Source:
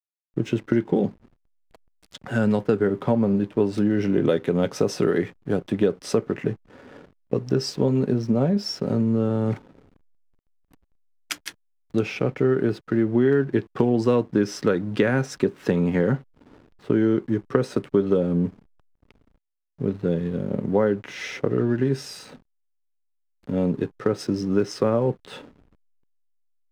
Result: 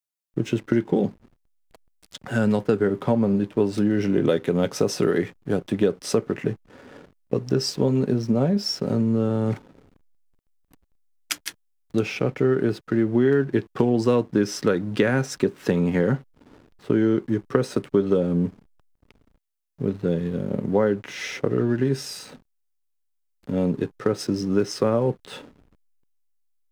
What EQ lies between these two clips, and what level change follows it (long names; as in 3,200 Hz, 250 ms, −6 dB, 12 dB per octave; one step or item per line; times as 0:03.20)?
high-shelf EQ 5,100 Hz +6.5 dB
0.0 dB